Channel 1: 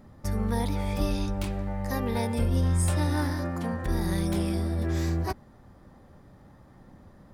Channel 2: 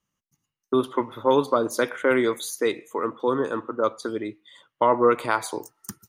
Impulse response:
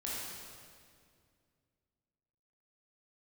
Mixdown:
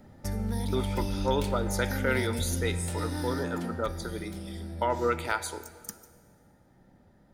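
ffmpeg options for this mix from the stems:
-filter_complex "[0:a]acrossover=split=250|3000[link_01][link_02][link_03];[link_02]acompressor=threshold=-37dB:ratio=6[link_04];[link_01][link_04][link_03]amix=inputs=3:normalize=0,lowshelf=frequency=130:gain=-4.5,acompressor=threshold=-28dB:ratio=6,volume=-0.5dB,afade=type=out:start_time=3.61:duration=0.34:silence=0.421697,asplit=2[link_05][link_06];[link_06]volume=-11.5dB[link_07];[1:a]tiltshelf=frequency=840:gain=-5,volume=-7.5dB,asplit=2[link_08][link_09];[link_09]volume=-15dB[link_10];[2:a]atrim=start_sample=2205[link_11];[link_07][link_10]amix=inputs=2:normalize=0[link_12];[link_12][link_11]afir=irnorm=-1:irlink=0[link_13];[link_05][link_08][link_13]amix=inputs=3:normalize=0,asuperstop=centerf=1100:order=4:qfactor=5"

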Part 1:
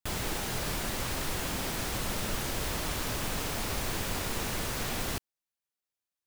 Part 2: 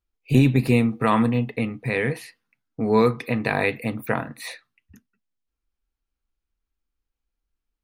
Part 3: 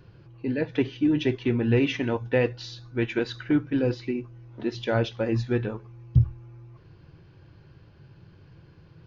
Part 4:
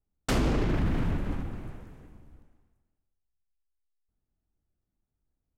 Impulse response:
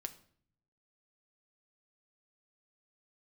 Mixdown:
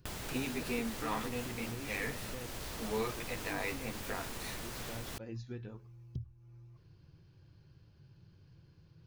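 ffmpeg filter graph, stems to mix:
-filter_complex "[0:a]volume=0dB[link_01];[1:a]asplit=2[link_02][link_03];[link_03]adelay=11.1,afreqshift=-1[link_04];[link_02][link_04]amix=inputs=2:normalize=1,volume=-8dB[link_05];[2:a]bass=frequency=250:gain=6,treble=frequency=4000:gain=14,volume=-14dB[link_06];[3:a]acompressor=threshold=-28dB:ratio=6,volume=-13.5dB[link_07];[link_05][link_07]amix=inputs=2:normalize=0,highpass=frequency=580:poles=1,alimiter=level_in=2.5dB:limit=-24dB:level=0:latency=1,volume=-2.5dB,volume=0dB[link_08];[link_01][link_06]amix=inputs=2:normalize=0,acompressor=threshold=-41dB:ratio=4,volume=0dB[link_09];[link_08][link_09]amix=inputs=2:normalize=0"

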